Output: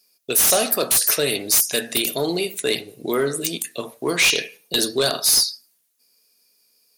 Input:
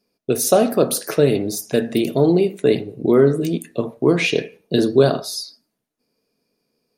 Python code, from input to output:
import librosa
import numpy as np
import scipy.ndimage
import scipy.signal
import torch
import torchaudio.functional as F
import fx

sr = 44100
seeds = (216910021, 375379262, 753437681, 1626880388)

p1 = F.preemphasis(torch.from_numpy(x), 0.97).numpy()
p2 = fx.fold_sine(p1, sr, drive_db=18, ceiling_db=-6.5)
y = p1 + (p2 * librosa.db_to_amplitude(-7.0))